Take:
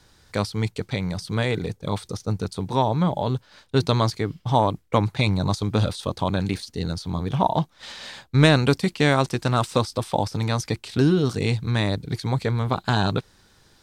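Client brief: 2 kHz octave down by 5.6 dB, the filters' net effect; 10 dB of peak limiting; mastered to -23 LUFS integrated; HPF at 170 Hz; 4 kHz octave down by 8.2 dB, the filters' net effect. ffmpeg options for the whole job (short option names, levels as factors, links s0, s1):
-af "highpass=170,equalizer=f=2000:t=o:g=-5.5,equalizer=f=4000:t=o:g=-8,volume=1.88,alimiter=limit=0.422:level=0:latency=1"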